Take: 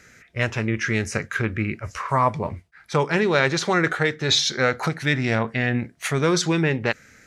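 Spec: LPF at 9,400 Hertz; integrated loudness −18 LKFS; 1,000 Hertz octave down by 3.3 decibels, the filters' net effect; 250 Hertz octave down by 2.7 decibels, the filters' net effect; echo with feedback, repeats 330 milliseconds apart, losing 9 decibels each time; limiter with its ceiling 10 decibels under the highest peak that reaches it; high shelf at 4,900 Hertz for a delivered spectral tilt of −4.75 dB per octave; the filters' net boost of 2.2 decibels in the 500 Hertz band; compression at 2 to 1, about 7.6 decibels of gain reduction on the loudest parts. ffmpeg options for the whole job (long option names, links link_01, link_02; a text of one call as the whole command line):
ffmpeg -i in.wav -af "lowpass=9400,equalizer=frequency=250:width_type=o:gain=-6,equalizer=frequency=500:width_type=o:gain=5.5,equalizer=frequency=1000:width_type=o:gain=-5,highshelf=frequency=4900:gain=-4.5,acompressor=threshold=-29dB:ratio=2,alimiter=limit=-23.5dB:level=0:latency=1,aecho=1:1:330|660|990|1320:0.355|0.124|0.0435|0.0152,volume=15dB" out.wav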